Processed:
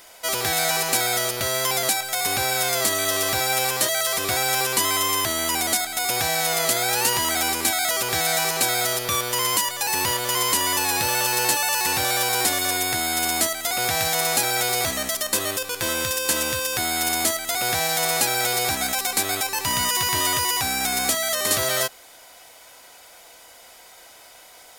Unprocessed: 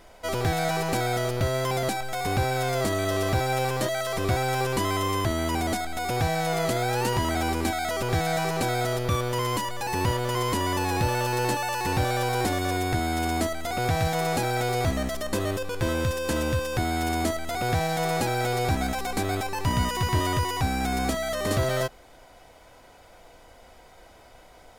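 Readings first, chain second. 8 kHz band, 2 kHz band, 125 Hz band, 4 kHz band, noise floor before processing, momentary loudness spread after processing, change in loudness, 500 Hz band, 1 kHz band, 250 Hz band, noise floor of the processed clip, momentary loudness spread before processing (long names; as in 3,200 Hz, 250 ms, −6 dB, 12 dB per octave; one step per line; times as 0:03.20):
+14.5 dB, +6.0 dB, −10.0 dB, +10.5 dB, −52 dBFS, 3 LU, +5.5 dB, −1.0 dB, +1.5 dB, −5.0 dB, −48 dBFS, 3 LU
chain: spectral tilt +4 dB per octave
level +2.5 dB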